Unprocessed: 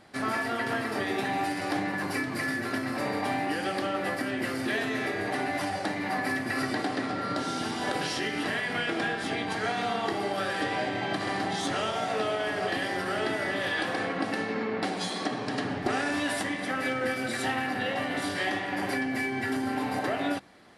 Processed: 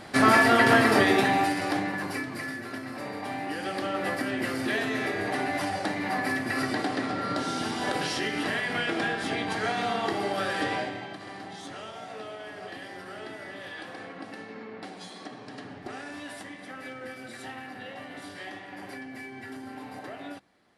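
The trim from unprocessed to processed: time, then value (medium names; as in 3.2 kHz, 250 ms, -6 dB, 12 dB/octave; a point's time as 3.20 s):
0.92 s +11 dB
1.62 s +2.5 dB
2.63 s -6 dB
3.18 s -6 dB
4.07 s +1 dB
10.73 s +1 dB
11.15 s -11 dB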